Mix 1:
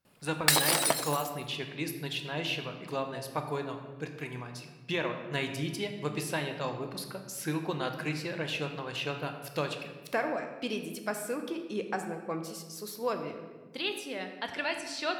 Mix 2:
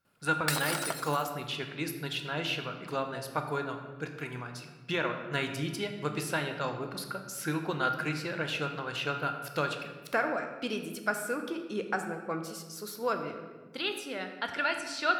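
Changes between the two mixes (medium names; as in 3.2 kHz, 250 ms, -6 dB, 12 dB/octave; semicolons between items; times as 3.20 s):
background -8.5 dB; master: add peaking EQ 1.4 kHz +13.5 dB 0.21 oct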